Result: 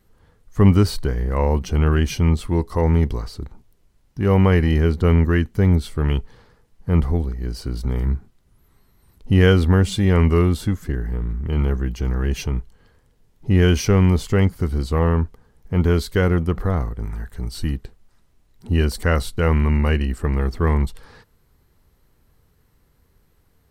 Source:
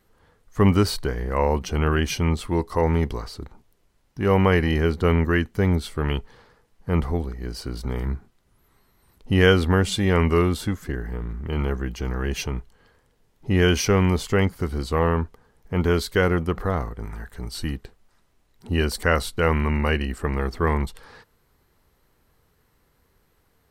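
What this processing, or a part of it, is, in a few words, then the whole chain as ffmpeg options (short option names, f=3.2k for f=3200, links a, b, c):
exciter from parts: -filter_complex "[0:a]lowshelf=f=280:g=9.5,asplit=2[a][b];[b]highpass=f=4.1k:p=1,asoftclip=type=tanh:threshold=-37.5dB,volume=-5.5dB[c];[a][c]amix=inputs=2:normalize=0,volume=-2.5dB"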